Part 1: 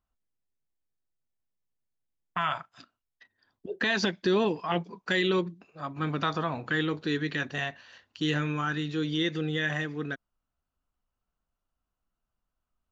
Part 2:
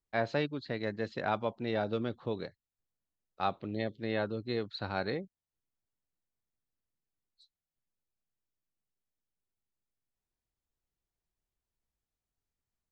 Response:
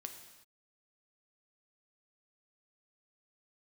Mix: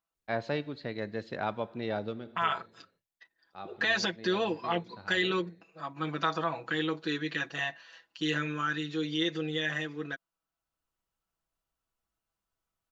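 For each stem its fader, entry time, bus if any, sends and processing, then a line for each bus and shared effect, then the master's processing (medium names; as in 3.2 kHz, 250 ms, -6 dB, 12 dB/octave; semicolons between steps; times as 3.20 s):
-2.5 dB, 0.00 s, no send, high-pass 400 Hz 6 dB/octave; comb 6.1 ms, depth 76%
-3.0 dB, 0.15 s, send -7.5 dB, auto duck -22 dB, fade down 0.30 s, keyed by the first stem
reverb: on, pre-delay 3 ms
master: none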